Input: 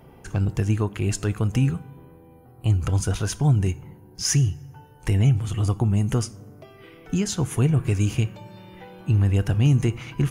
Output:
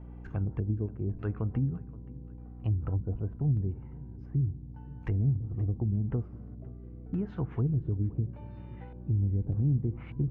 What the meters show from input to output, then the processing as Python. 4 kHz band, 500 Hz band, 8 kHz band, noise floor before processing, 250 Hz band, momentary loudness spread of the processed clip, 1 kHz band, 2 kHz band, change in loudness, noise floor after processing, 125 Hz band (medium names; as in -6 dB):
under -30 dB, -10.5 dB, under -40 dB, -50 dBFS, -8.5 dB, 16 LU, under -10 dB, under -15 dB, -9.0 dB, -45 dBFS, -8.0 dB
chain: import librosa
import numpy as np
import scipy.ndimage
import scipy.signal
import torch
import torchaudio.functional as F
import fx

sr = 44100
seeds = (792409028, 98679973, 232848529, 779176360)

p1 = fx.env_lowpass_down(x, sr, base_hz=360.0, full_db=-16.0)
p2 = fx.high_shelf(p1, sr, hz=6200.0, db=-8.0)
p3 = fx.filter_lfo_lowpass(p2, sr, shape='square', hz=0.84, low_hz=510.0, high_hz=2100.0, q=0.78)
p4 = fx.add_hum(p3, sr, base_hz=60, snr_db=13)
p5 = p4 + fx.echo_feedback(p4, sr, ms=525, feedback_pct=39, wet_db=-20.0, dry=0)
y = F.gain(torch.from_numpy(p5), -8.5).numpy()